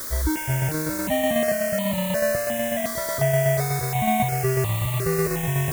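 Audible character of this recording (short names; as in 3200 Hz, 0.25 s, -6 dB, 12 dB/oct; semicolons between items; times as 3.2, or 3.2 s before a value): tremolo saw down 8.1 Hz, depth 50%; a quantiser's noise floor 6-bit, dither triangular; notches that jump at a steady rate 2.8 Hz 740–1500 Hz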